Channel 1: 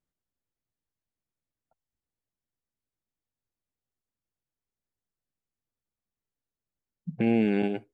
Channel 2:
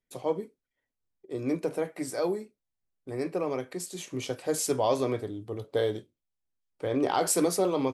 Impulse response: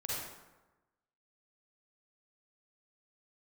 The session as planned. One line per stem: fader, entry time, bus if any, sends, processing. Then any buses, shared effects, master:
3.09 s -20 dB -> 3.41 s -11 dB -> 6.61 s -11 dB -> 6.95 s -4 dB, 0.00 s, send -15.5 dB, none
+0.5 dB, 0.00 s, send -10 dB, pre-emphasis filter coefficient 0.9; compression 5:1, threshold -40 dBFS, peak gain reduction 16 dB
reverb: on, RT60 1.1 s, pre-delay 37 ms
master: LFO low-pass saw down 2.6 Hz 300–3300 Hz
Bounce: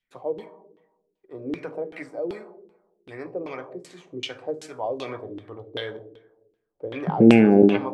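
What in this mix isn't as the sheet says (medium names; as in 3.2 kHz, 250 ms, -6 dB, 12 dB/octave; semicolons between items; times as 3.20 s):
stem 1 -20.0 dB -> -8.5 dB; stem 2 +0.5 dB -> +11.5 dB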